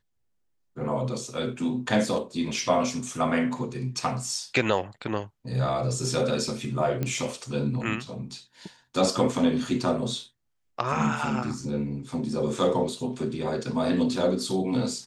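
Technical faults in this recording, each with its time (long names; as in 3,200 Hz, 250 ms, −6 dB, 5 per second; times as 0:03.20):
0:07.03: click −15 dBFS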